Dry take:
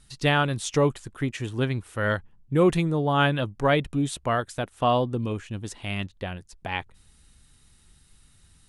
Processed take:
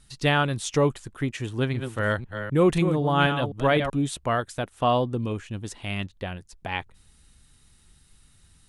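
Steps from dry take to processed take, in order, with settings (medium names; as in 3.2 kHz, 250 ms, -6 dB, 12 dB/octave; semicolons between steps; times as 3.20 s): 1.48–3.90 s: chunks repeated in reverse 255 ms, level -8 dB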